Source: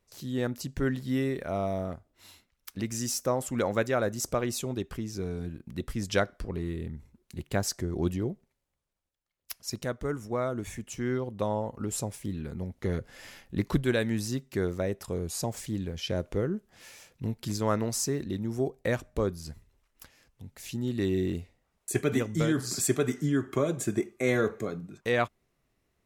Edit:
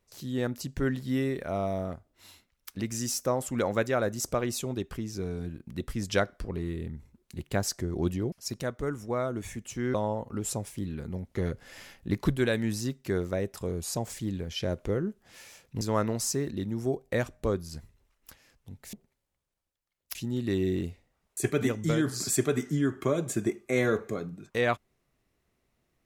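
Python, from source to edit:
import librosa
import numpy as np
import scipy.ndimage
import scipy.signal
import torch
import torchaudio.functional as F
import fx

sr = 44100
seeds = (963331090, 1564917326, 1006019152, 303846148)

y = fx.edit(x, sr, fx.move(start_s=8.32, length_s=1.22, to_s=20.66),
    fx.cut(start_s=11.16, length_s=0.25),
    fx.cut(start_s=17.28, length_s=0.26), tone=tone)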